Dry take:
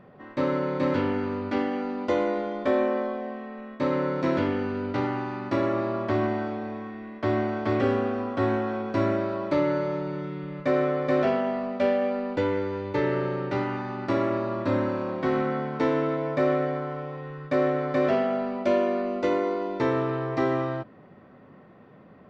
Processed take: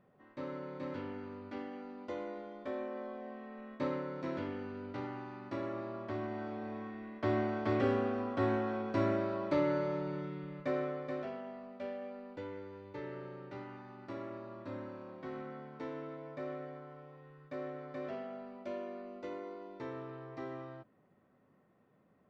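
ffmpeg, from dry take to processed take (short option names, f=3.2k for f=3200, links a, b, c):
-af "volume=-1dB,afade=t=in:st=2.9:d=0.85:silence=0.375837,afade=t=out:st=3.75:d=0.29:silence=0.501187,afade=t=in:st=6.27:d=0.54:silence=0.446684,afade=t=out:st=10.14:d=1.13:silence=0.266073"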